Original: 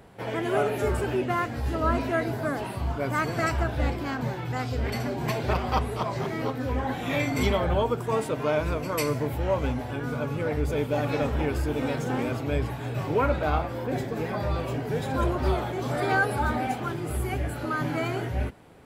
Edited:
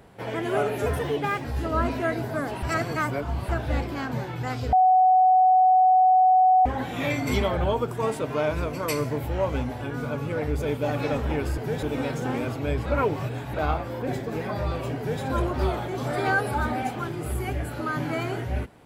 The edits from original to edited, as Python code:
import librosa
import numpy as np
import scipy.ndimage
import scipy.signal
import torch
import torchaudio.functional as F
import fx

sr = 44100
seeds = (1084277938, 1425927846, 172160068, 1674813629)

y = fx.edit(x, sr, fx.speed_span(start_s=0.86, length_s=0.68, speed=1.16),
    fx.reverse_span(start_s=2.72, length_s=0.86),
    fx.bleep(start_s=4.82, length_s=1.93, hz=745.0, db=-14.0),
    fx.reverse_span(start_s=12.7, length_s=0.68),
    fx.duplicate(start_s=14.81, length_s=0.25, to_s=11.67), tone=tone)